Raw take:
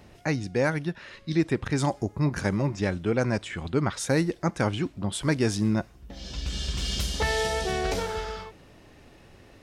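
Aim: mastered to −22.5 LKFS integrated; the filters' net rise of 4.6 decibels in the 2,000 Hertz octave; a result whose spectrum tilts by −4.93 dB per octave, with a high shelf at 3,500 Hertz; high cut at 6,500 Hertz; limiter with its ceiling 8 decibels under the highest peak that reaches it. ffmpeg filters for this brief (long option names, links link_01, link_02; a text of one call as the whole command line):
ffmpeg -i in.wav -af "lowpass=6500,equalizer=frequency=2000:width_type=o:gain=8,highshelf=frequency=3500:gain=-9,volume=7.5dB,alimiter=limit=-11dB:level=0:latency=1" out.wav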